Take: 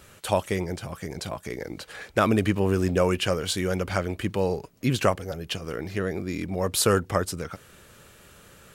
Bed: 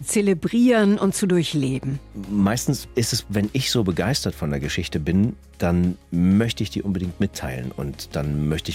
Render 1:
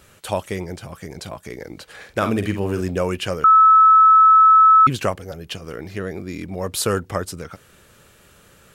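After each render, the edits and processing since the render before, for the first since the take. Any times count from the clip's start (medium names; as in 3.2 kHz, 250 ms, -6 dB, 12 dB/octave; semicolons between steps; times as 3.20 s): 1.95–2.81 s: doubling 49 ms -8.5 dB; 3.44–4.87 s: bleep 1.3 kHz -7.5 dBFS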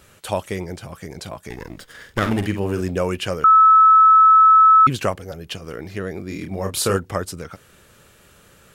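1.50–2.47 s: comb filter that takes the minimum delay 0.59 ms; 6.27–6.97 s: doubling 31 ms -6 dB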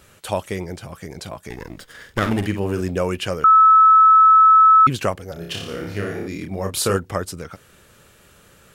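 5.33–6.28 s: flutter echo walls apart 5 m, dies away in 0.7 s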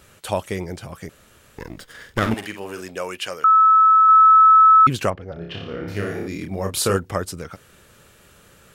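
1.09–1.58 s: room tone; 2.34–4.09 s: high-pass 1 kHz 6 dB/octave; 5.10–5.88 s: distance through air 310 m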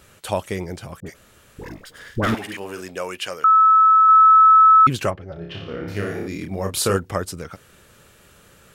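1.00–2.57 s: phase dispersion highs, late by 63 ms, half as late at 870 Hz; 5.04–5.68 s: comb of notches 240 Hz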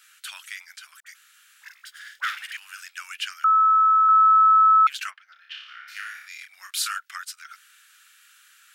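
elliptic high-pass 1.4 kHz, stop band 70 dB; dynamic bell 9.4 kHz, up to -4 dB, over -45 dBFS, Q 0.9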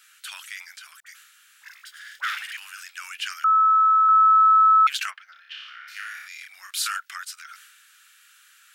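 transient shaper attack -1 dB, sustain +6 dB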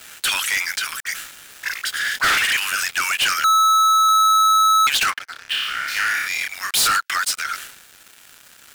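gain riding 2 s; waveshaping leveller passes 5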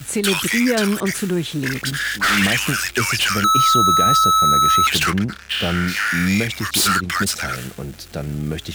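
add bed -2 dB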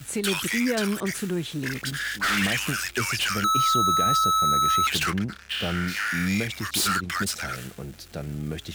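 trim -7 dB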